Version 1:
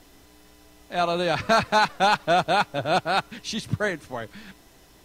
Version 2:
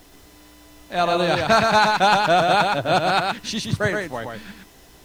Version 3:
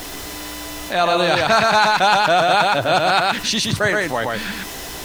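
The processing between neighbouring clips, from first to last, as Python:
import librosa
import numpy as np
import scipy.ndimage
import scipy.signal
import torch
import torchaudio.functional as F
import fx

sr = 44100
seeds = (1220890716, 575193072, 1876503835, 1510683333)

y1 = x + 10.0 ** (-4.0 / 20.0) * np.pad(x, (int(120 * sr / 1000.0), 0))[:len(x)]
y1 = fx.quant_dither(y1, sr, seeds[0], bits=10, dither='none')
y1 = y1 * 10.0 ** (3.0 / 20.0)
y2 = fx.low_shelf(y1, sr, hz=440.0, db=-7.0)
y2 = fx.env_flatten(y2, sr, amount_pct=50)
y2 = y2 * 10.0 ** (2.0 / 20.0)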